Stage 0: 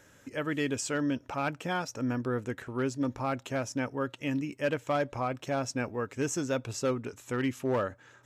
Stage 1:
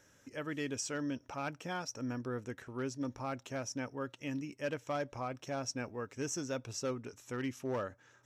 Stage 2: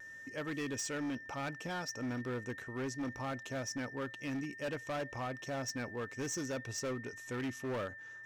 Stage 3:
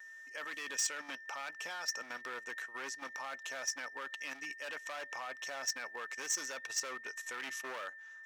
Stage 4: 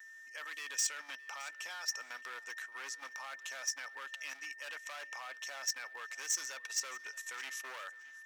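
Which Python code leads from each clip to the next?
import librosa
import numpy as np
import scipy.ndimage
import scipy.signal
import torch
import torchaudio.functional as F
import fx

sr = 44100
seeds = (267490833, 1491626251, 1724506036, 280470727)

y1 = fx.peak_eq(x, sr, hz=5700.0, db=9.5, octaves=0.24)
y1 = y1 * librosa.db_to_amplitude(-7.5)
y2 = y1 + 10.0 ** (-49.0 / 20.0) * np.sin(2.0 * np.pi * 1800.0 * np.arange(len(y1)) / sr)
y2 = np.clip(y2, -10.0 ** (-35.5 / 20.0), 10.0 ** (-35.5 / 20.0))
y2 = fx.vibrato(y2, sr, rate_hz=0.47, depth_cents=11.0)
y2 = y2 * librosa.db_to_amplitude(1.5)
y3 = scipy.signal.sosfilt(scipy.signal.butter(2, 970.0, 'highpass', fs=sr, output='sos'), y2)
y3 = fx.level_steps(y3, sr, step_db=10)
y3 = y3 * librosa.db_to_amplitude(8.0)
y4 = fx.highpass(y3, sr, hz=1200.0, slope=6)
y4 = fx.high_shelf(y4, sr, hz=9200.0, db=3.5)
y4 = fx.echo_feedback(y4, sr, ms=616, feedback_pct=18, wet_db=-21)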